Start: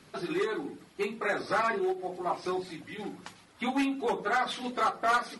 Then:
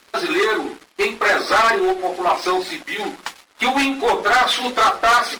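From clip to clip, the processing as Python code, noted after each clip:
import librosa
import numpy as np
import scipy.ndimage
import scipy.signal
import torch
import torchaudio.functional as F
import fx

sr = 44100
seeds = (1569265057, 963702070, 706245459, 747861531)

y = fx.weighting(x, sr, curve='A')
y = fx.leveller(y, sr, passes=3)
y = fx.peak_eq(y, sr, hz=140.0, db=-10.0, octaves=0.61)
y = y * 10.0 ** (6.5 / 20.0)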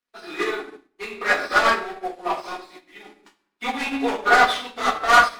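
y = fx.room_shoebox(x, sr, seeds[0], volume_m3=420.0, walls='mixed', distance_m=1.8)
y = fx.upward_expand(y, sr, threshold_db=-31.0, expansion=2.5)
y = y * 10.0 ** (-2.5 / 20.0)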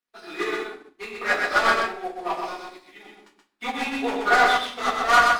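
y = x + 10.0 ** (-4.0 / 20.0) * np.pad(x, (int(126 * sr / 1000.0), 0))[:len(x)]
y = y * 10.0 ** (-3.0 / 20.0)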